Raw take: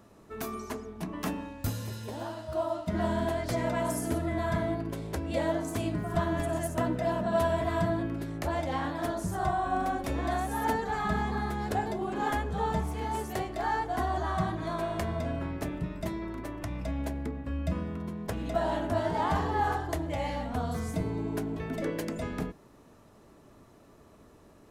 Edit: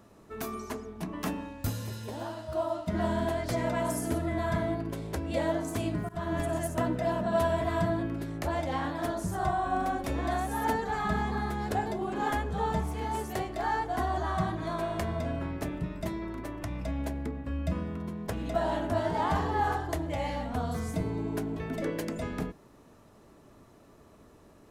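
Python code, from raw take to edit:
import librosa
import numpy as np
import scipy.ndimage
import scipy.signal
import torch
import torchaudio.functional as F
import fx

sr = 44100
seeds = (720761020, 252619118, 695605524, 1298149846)

y = fx.edit(x, sr, fx.fade_in_from(start_s=6.09, length_s=0.27, floor_db=-20.5), tone=tone)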